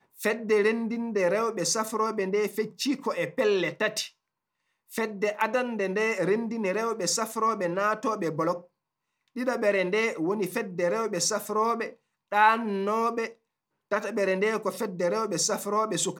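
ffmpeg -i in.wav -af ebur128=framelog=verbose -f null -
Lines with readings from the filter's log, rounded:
Integrated loudness:
  I:         -27.2 LUFS
  Threshold: -37.4 LUFS
Loudness range:
  LRA:         2.5 LU
  Threshold: -47.8 LUFS
  LRA low:   -29.1 LUFS
  LRA high:  -26.6 LUFS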